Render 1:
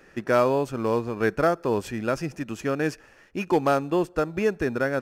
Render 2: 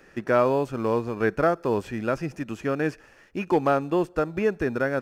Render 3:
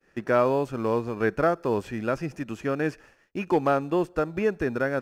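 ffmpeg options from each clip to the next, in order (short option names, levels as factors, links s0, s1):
-filter_complex "[0:a]acrossover=split=3100[s0][s1];[s1]acompressor=threshold=0.00398:ratio=4:attack=1:release=60[s2];[s0][s2]amix=inputs=2:normalize=0"
-af "agate=range=0.0224:threshold=0.00501:ratio=3:detection=peak,volume=0.891"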